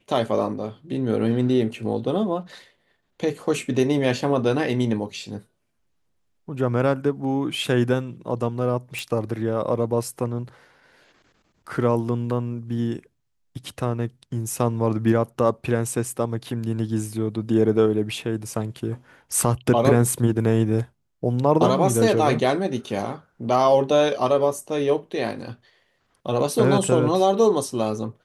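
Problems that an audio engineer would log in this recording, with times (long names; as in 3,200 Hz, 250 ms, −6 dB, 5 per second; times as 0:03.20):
0:08.99: click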